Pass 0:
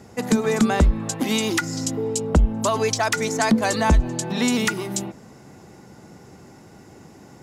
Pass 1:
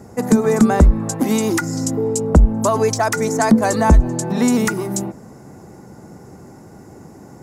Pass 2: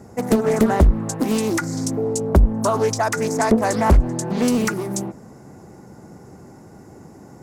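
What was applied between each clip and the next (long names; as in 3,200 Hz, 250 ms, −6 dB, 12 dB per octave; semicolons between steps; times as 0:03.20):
parametric band 3,200 Hz −14 dB 1.4 octaves; level +6 dB
highs frequency-modulated by the lows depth 0.94 ms; level −2.5 dB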